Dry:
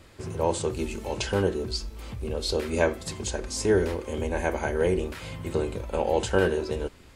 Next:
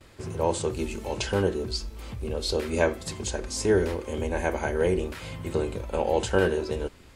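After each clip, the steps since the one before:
noise gate with hold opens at −44 dBFS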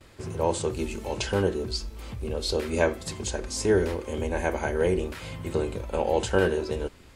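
no processing that can be heard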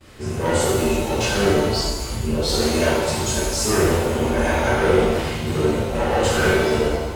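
gain into a clipping stage and back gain 23.5 dB
reverb with rising layers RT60 1.2 s, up +7 semitones, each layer −8 dB, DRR −9.5 dB

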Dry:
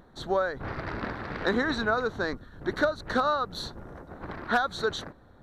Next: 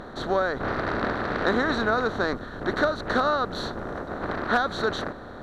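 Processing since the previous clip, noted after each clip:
compressor on every frequency bin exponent 0.6
high-shelf EQ 7,300 Hz −8.5 dB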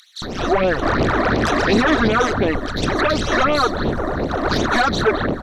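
sine wavefolder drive 10 dB, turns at −9.5 dBFS
all-pass phaser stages 12, 2.8 Hz, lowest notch 140–1,600 Hz
multiband delay without the direct sound highs, lows 220 ms, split 3,000 Hz
level +1 dB

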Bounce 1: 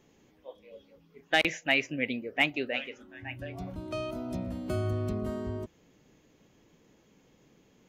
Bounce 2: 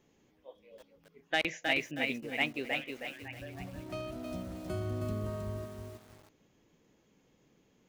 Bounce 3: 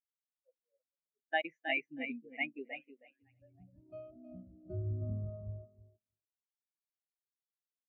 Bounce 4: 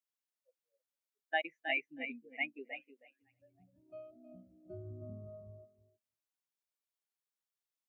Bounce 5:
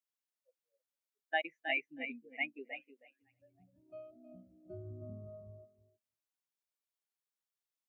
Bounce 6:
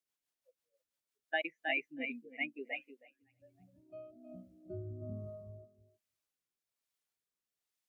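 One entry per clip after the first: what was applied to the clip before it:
feedback echo at a low word length 317 ms, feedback 35%, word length 8 bits, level −4 dB; level −5.5 dB
every bin expanded away from the loudest bin 2.5 to 1; level −6.5 dB
high-pass filter 380 Hz 6 dB per octave
no processing that can be heard
rotating-speaker cabinet horn 6 Hz, later 1.2 Hz, at 0:01.46; level +5 dB

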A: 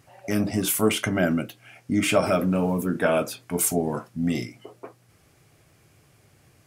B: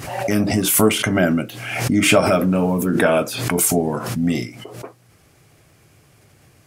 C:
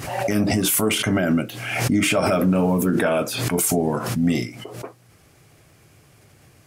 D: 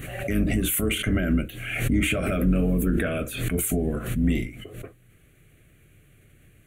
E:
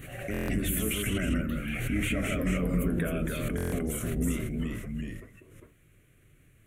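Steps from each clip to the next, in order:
background raised ahead of every attack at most 48 dB per second; level +5 dB
brickwall limiter −10.5 dBFS, peak gain reduction 9 dB
sub-octave generator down 2 octaves, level −3 dB; phaser with its sweep stopped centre 2,200 Hz, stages 4; level −3 dB
delay with pitch and tempo change per echo 96 ms, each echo −1 semitone, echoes 2; buffer that repeats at 0:00.32/0:03.56, samples 1,024, times 6; level −7.5 dB

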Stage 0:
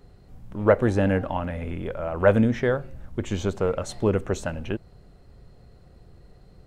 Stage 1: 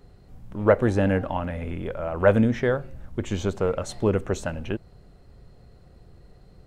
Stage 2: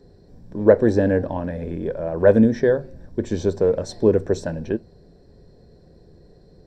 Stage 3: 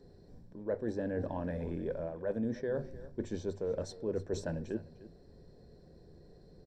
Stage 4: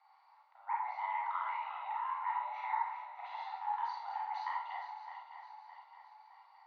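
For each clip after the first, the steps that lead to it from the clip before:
no processing that can be heard
convolution reverb RT60 0.20 s, pre-delay 3 ms, DRR 16 dB; level −7.5 dB
mains-hum notches 50/100 Hz; reversed playback; downward compressor 6 to 1, threshold −26 dBFS, peak gain reduction 18 dB; reversed playback; single-tap delay 302 ms −17.5 dB; level −6.5 dB
feedback delay that plays each chunk backwards 307 ms, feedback 68%, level −9.5 dB; four-comb reverb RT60 0.46 s, combs from 31 ms, DRR −2.5 dB; single-sideband voice off tune +380 Hz 560–3,500 Hz

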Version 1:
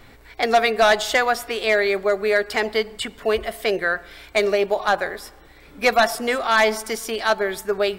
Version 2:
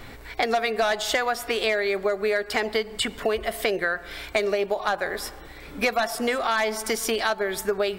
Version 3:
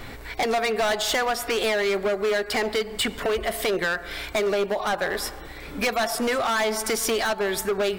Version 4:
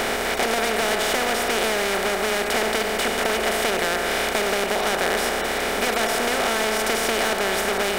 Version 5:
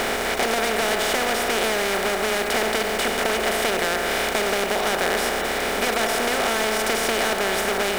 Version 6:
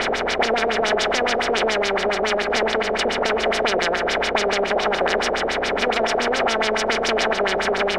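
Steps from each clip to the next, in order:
downward compressor, threshold −27 dBFS, peak gain reduction 14 dB; level +5.5 dB
gain into a clipping stage and back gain 23.5 dB; level +3.5 dB
compressor on every frequency bin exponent 0.2; level −7.5 dB
hold until the input has moved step −34.5 dBFS
auto-filter low-pass sine 7.1 Hz 490–5,900 Hz

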